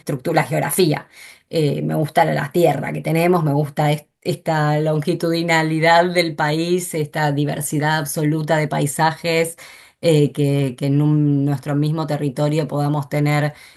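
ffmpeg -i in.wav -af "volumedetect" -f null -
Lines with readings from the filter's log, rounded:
mean_volume: -18.4 dB
max_volume: -1.9 dB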